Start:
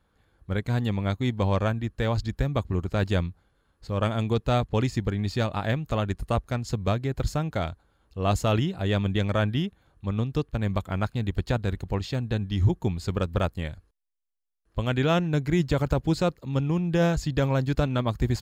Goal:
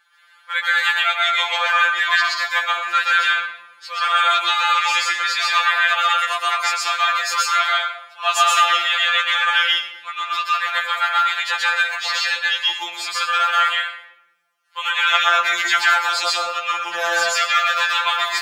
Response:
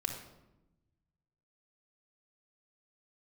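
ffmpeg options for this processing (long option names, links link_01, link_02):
-filter_complex "[0:a]highpass=frequency=1300:width=0.5412,highpass=frequency=1300:width=1.3066,aemphasis=mode=reproduction:type=cd,asplit=2[link_01][link_02];[1:a]atrim=start_sample=2205,adelay=128[link_03];[link_02][link_03]afir=irnorm=-1:irlink=0,volume=1.5dB[link_04];[link_01][link_04]amix=inputs=2:normalize=0,alimiter=level_in=22.5dB:limit=-1dB:release=50:level=0:latency=1,afftfilt=real='re*2.83*eq(mod(b,8),0)':imag='im*2.83*eq(mod(b,8),0)':win_size=2048:overlap=0.75,volume=-1.5dB"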